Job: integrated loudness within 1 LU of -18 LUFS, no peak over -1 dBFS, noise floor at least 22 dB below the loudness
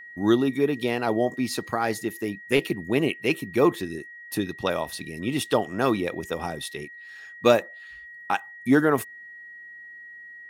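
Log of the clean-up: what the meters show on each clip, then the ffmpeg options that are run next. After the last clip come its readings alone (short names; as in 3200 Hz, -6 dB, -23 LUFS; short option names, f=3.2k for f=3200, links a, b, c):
steady tone 1900 Hz; tone level -41 dBFS; loudness -25.5 LUFS; peak -4.0 dBFS; loudness target -18.0 LUFS
-> -af "bandreject=f=1.9k:w=30"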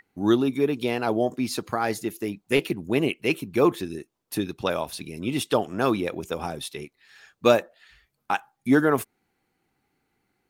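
steady tone none; loudness -25.5 LUFS; peak -4.0 dBFS; loudness target -18.0 LUFS
-> -af "volume=7.5dB,alimiter=limit=-1dB:level=0:latency=1"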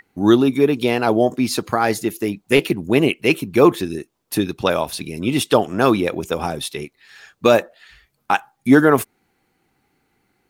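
loudness -18.5 LUFS; peak -1.0 dBFS; noise floor -69 dBFS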